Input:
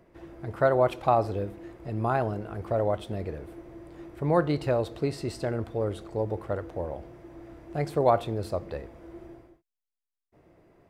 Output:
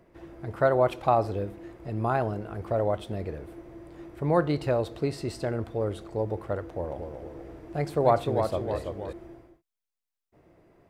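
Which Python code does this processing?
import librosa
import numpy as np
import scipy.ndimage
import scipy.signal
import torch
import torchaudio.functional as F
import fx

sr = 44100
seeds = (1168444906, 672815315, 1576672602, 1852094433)

y = fx.echo_pitch(x, sr, ms=219, semitones=-1, count=3, db_per_echo=-6.0, at=(6.62, 9.13))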